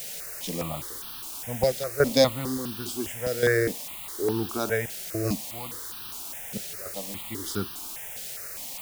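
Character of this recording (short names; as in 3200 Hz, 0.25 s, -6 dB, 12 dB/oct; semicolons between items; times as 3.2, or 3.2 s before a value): random-step tremolo, depth 95%; a quantiser's noise floor 8-bit, dither triangular; notches that jump at a steady rate 4.9 Hz 290–2100 Hz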